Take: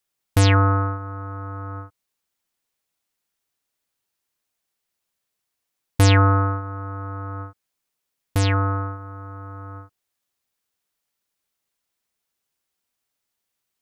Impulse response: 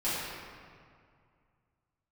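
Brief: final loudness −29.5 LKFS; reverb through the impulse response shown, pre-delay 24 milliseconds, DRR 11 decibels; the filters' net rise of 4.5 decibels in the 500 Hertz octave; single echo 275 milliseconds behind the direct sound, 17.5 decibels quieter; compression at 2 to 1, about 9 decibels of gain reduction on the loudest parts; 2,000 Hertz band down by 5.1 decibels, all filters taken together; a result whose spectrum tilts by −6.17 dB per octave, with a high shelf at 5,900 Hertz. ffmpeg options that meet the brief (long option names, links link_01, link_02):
-filter_complex "[0:a]equalizer=frequency=500:width_type=o:gain=5.5,equalizer=frequency=2000:width_type=o:gain=-8.5,highshelf=frequency=5900:gain=7.5,acompressor=threshold=-28dB:ratio=2,aecho=1:1:275:0.133,asplit=2[link_01][link_02];[1:a]atrim=start_sample=2205,adelay=24[link_03];[link_02][link_03]afir=irnorm=-1:irlink=0,volume=-20.5dB[link_04];[link_01][link_04]amix=inputs=2:normalize=0,volume=-0.5dB"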